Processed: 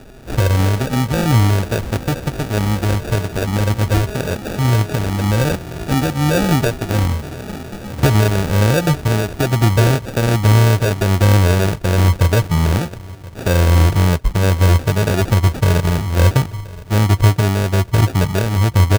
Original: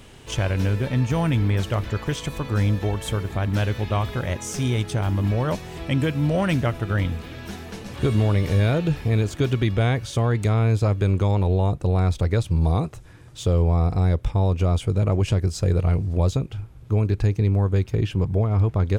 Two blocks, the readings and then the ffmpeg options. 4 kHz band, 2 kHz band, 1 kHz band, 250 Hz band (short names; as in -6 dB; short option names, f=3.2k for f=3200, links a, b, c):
+9.5 dB, +9.5 dB, +8.5 dB, +6.0 dB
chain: -af "afftfilt=real='re*pow(10,9/40*sin(2*PI*(1.6*log(max(b,1)*sr/1024/100)/log(2)-(-1.2)*(pts-256)/sr)))':imag='im*pow(10,9/40*sin(2*PI*(1.6*log(max(b,1)*sr/1024/100)/log(2)-(-1.2)*(pts-256)/sr)))':win_size=1024:overlap=0.75,aecho=1:1:1026|2052:0.0891|0.0241,acrusher=samples=42:mix=1:aa=0.000001,volume=5.5dB"